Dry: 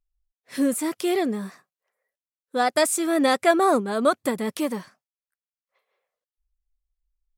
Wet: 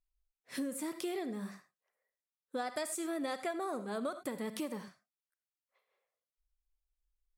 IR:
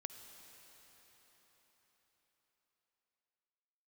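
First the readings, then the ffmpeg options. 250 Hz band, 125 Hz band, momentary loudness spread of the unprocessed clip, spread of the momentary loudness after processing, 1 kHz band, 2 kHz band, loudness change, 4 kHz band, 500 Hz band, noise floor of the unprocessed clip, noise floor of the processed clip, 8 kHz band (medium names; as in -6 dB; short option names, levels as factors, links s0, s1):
-14.5 dB, no reading, 13 LU, 8 LU, -17.5 dB, -16.5 dB, -16.0 dB, -15.5 dB, -16.0 dB, under -85 dBFS, under -85 dBFS, -14.5 dB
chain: -filter_complex "[1:a]atrim=start_sample=2205,atrim=end_sample=6615,asetrate=61740,aresample=44100[s0];[0:a][s0]afir=irnorm=-1:irlink=0,acompressor=threshold=0.0158:ratio=6,volume=1.12"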